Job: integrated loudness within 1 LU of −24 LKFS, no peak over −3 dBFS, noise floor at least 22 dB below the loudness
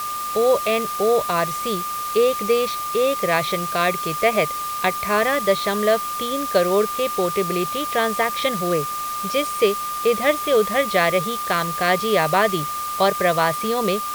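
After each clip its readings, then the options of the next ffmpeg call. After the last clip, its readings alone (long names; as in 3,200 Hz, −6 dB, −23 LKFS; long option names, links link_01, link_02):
interfering tone 1,200 Hz; level of the tone −25 dBFS; background noise floor −27 dBFS; target noise floor −43 dBFS; integrated loudness −20.5 LKFS; sample peak −3.5 dBFS; target loudness −24.0 LKFS
→ -af "bandreject=frequency=1200:width=30"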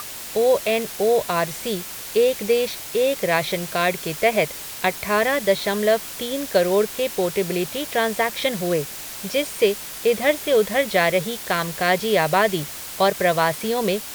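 interfering tone none found; background noise floor −34 dBFS; target noise floor −44 dBFS
→ -af "afftdn=noise_reduction=10:noise_floor=-34"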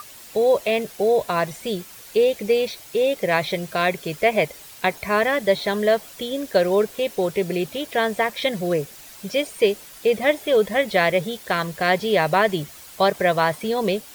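background noise floor −43 dBFS; target noise floor −44 dBFS
→ -af "afftdn=noise_reduction=6:noise_floor=-43"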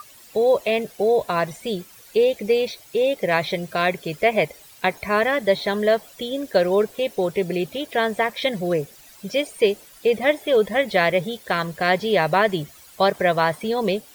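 background noise floor −48 dBFS; integrated loudness −22.0 LKFS; sample peak −5.0 dBFS; target loudness −24.0 LKFS
→ -af "volume=-2dB"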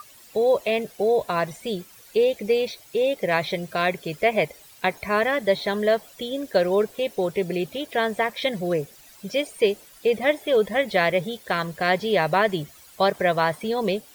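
integrated loudness −24.0 LKFS; sample peak −7.0 dBFS; background noise floor −50 dBFS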